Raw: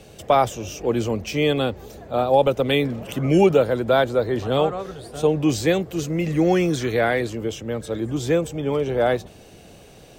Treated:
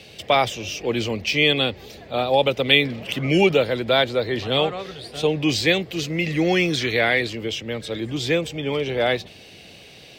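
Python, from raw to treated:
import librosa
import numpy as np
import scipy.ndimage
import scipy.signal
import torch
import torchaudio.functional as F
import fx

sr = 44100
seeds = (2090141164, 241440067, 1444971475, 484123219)

y = scipy.signal.sosfilt(scipy.signal.butter(2, 66.0, 'highpass', fs=sr, output='sos'), x)
y = fx.band_shelf(y, sr, hz=3100.0, db=11.5, octaves=1.7)
y = y * librosa.db_to_amplitude(-2.0)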